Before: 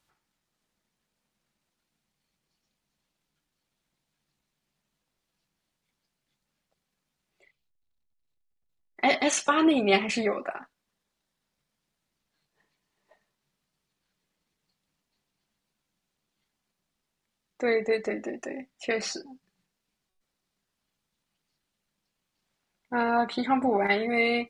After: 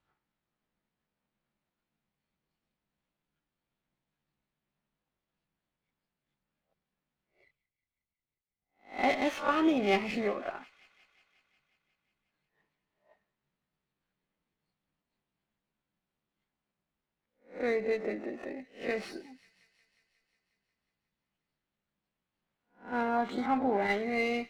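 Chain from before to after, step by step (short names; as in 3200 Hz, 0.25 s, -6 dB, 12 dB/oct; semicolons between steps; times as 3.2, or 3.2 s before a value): spectral swells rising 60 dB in 0.33 s; air absorption 260 m; on a send: thin delay 0.18 s, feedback 71%, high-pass 2400 Hz, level -17 dB; on the sum: running maximum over 3 samples; gain -4.5 dB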